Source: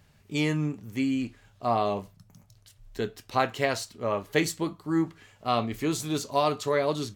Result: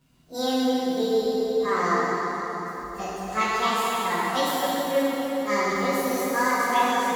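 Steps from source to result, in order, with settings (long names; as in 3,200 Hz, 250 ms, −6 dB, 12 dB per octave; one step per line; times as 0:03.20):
phase-vocoder pitch shift without resampling +9 semitones
dense smooth reverb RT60 4.5 s, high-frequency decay 0.8×, DRR −8 dB
level −2 dB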